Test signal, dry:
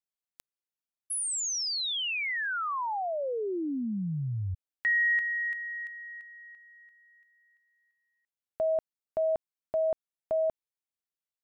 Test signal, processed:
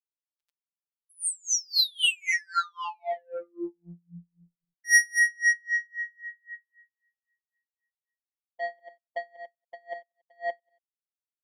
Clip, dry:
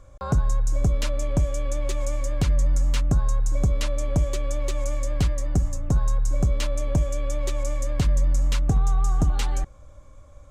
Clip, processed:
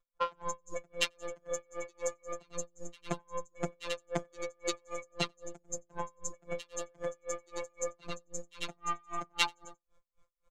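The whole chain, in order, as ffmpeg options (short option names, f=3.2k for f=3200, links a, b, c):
-filter_complex "[0:a]afftdn=nr=24:nf=-33,acrossover=split=320 4300:gain=0.0794 1 0.0891[a][b][c];[a][b][c]amix=inputs=3:normalize=0,asoftclip=type=tanh:threshold=-29dB,crystalizer=i=8:c=0,afftfilt=real='hypot(re,im)*cos(PI*b)':imag='0':win_size=1024:overlap=0.75,aecho=1:1:93|186|279:0.251|0.0502|0.01,aeval=exprs='val(0)*pow(10,-36*(0.5-0.5*cos(2*PI*3.8*n/s))/20)':c=same,volume=7.5dB"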